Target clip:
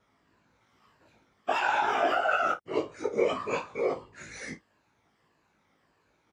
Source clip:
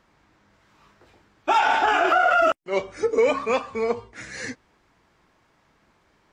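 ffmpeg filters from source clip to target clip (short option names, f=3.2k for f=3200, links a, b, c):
-filter_complex "[0:a]afftfilt=real='re*pow(10,8/40*sin(2*PI*(1.4*log(max(b,1)*sr/1024/100)/log(2)-(-1.6)*(pts-256)/sr)))':imag='im*pow(10,8/40*sin(2*PI*(1.4*log(max(b,1)*sr/1024/100)/log(2)-(-1.6)*(pts-256)/sr)))':win_size=1024:overlap=0.75,asplit=2[a][b];[b]adelay=16,volume=-4dB[c];[a][c]amix=inputs=2:normalize=0,afftfilt=real='hypot(re,im)*cos(2*PI*random(0))':imag='hypot(re,im)*sin(2*PI*random(1))':win_size=512:overlap=0.75,highpass=53,aecho=1:1:19|53:0.596|0.188,volume=-4.5dB"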